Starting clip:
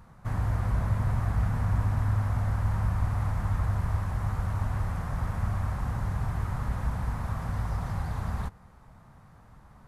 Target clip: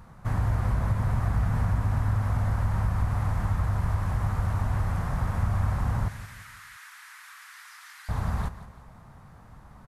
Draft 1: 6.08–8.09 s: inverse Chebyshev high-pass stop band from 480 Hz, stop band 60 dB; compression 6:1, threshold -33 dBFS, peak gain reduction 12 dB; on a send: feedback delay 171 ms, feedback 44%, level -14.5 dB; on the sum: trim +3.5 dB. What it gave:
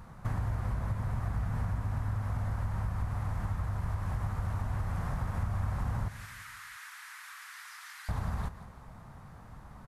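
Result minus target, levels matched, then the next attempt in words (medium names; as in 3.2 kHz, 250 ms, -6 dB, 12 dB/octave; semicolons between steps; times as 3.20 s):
compression: peak gain reduction +8 dB
6.08–8.09 s: inverse Chebyshev high-pass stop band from 480 Hz, stop band 60 dB; compression 6:1, threshold -23.5 dBFS, peak gain reduction 4 dB; on a send: feedback delay 171 ms, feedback 44%, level -14.5 dB; on the sum: trim +3.5 dB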